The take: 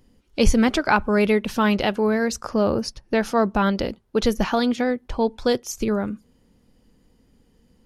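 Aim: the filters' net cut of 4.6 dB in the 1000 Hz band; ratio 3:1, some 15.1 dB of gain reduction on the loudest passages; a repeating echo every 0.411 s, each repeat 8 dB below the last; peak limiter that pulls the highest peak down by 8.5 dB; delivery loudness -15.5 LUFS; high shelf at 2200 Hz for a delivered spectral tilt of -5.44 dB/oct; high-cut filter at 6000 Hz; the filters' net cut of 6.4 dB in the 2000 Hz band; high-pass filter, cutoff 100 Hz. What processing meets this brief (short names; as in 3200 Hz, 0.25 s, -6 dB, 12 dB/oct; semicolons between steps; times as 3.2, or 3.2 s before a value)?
HPF 100 Hz; LPF 6000 Hz; bell 1000 Hz -4 dB; bell 2000 Hz -4.5 dB; high shelf 2200 Hz -5 dB; compressor 3:1, threshold -37 dBFS; limiter -29.5 dBFS; feedback echo 0.411 s, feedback 40%, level -8 dB; gain +24 dB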